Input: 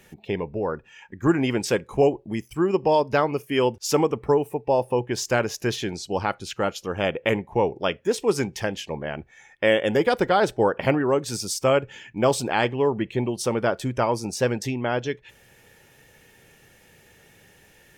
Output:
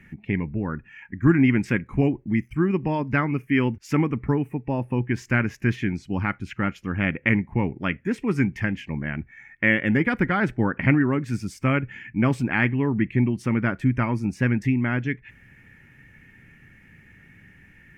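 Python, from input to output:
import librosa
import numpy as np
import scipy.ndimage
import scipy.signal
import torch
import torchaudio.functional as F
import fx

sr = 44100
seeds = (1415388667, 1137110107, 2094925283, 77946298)

y = fx.curve_eq(x, sr, hz=(270.0, 470.0, 810.0, 2100.0, 3700.0), db=(0, -19, -16, 1, -23))
y = y * 10.0 ** (7.0 / 20.0)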